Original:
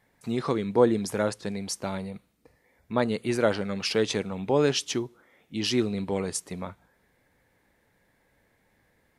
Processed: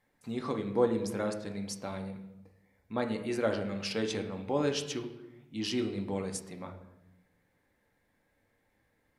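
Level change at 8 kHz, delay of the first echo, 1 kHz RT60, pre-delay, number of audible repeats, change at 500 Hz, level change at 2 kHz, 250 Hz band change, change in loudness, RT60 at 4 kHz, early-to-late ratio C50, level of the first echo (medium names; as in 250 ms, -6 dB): -8.0 dB, no echo, 0.90 s, 4 ms, no echo, -6.5 dB, -7.0 dB, -5.5 dB, -6.0 dB, 0.75 s, 9.0 dB, no echo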